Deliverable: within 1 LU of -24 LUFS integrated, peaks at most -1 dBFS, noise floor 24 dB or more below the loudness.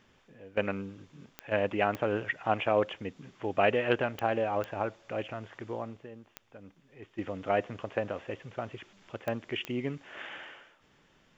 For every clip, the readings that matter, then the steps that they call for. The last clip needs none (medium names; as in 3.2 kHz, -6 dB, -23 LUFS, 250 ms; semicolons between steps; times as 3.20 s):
clicks found 7; loudness -32.5 LUFS; peak level -10.0 dBFS; loudness target -24.0 LUFS
-> de-click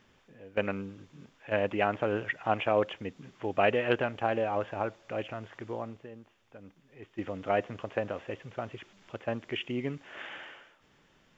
clicks found 0; loudness -32.5 LUFS; peak level -10.0 dBFS; loudness target -24.0 LUFS
-> trim +8.5 dB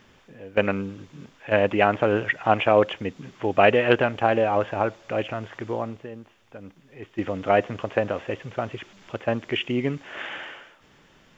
loudness -24.0 LUFS; peak level -1.5 dBFS; noise floor -57 dBFS